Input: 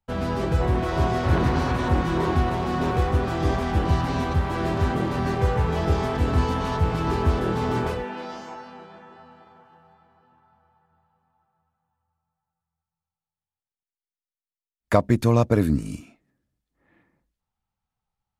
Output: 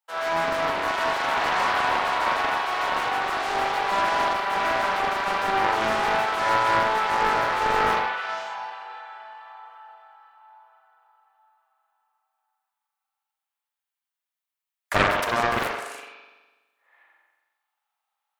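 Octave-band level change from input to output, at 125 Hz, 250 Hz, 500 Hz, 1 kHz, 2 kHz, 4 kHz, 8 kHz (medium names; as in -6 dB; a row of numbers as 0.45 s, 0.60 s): -19.0 dB, -12.0 dB, -2.0 dB, +6.5 dB, +9.0 dB, +7.0 dB, +4.0 dB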